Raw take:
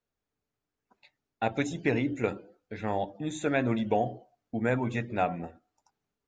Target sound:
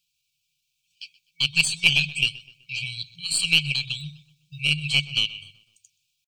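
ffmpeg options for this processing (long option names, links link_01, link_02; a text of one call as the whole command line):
ffmpeg -i in.wav -filter_complex "[0:a]acrossover=split=160 4100:gain=0.178 1 0.158[link_01][link_02][link_03];[link_01][link_02][link_03]amix=inputs=3:normalize=0,afftfilt=real='re*(1-between(b*sr/4096,150,1900))':imag='im*(1-between(b*sr/4096,150,1900))':win_size=4096:overlap=0.75,crystalizer=i=8.5:c=0,asplit=2[link_04][link_05];[link_05]asoftclip=type=tanh:threshold=-23dB,volume=-10dB[link_06];[link_04][link_06]amix=inputs=2:normalize=0,adynamicequalizer=threshold=0.00251:dfrequency=7200:dqfactor=6.4:tfrequency=7200:tqfactor=6.4:attack=5:release=100:ratio=0.375:range=2.5:mode=boostabove:tftype=bell,aeval=exprs='0.531*(cos(1*acos(clip(val(0)/0.531,-1,1)))-cos(1*PI/2))+0.00335*(cos(4*acos(clip(val(0)/0.531,-1,1)))-cos(4*PI/2))+0.0668*(cos(6*acos(clip(val(0)/0.531,-1,1)))-cos(6*PI/2))+0.0596*(cos(8*acos(clip(val(0)/0.531,-1,1)))-cos(8*PI/2))':channel_layout=same,asetrate=52444,aresample=44100,atempo=0.840896,asplit=2[link_07][link_08];[link_08]adelay=126,lowpass=frequency=3800:poles=1,volume=-18.5dB,asplit=2[link_09][link_10];[link_10]adelay=126,lowpass=frequency=3800:poles=1,volume=0.48,asplit=2[link_11][link_12];[link_12]adelay=126,lowpass=frequency=3800:poles=1,volume=0.48,asplit=2[link_13][link_14];[link_14]adelay=126,lowpass=frequency=3800:poles=1,volume=0.48[link_15];[link_09][link_11][link_13][link_15]amix=inputs=4:normalize=0[link_16];[link_07][link_16]amix=inputs=2:normalize=0,volume=8dB" out.wav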